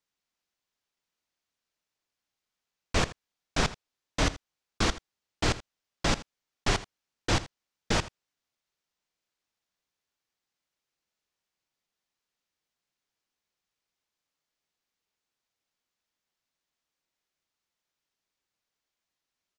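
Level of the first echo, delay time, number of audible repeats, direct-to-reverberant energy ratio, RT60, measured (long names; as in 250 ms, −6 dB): −17.0 dB, 81 ms, 1, no reverb audible, no reverb audible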